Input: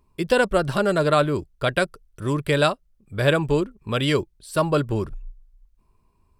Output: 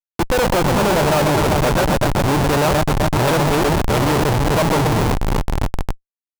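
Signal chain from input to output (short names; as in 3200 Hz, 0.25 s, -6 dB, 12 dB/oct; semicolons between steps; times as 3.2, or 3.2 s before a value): echo with dull and thin repeats by turns 0.126 s, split 1100 Hz, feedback 89%, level -6.5 dB; Schmitt trigger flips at -22 dBFS; bell 870 Hz +7 dB 0.64 oct; gain +5 dB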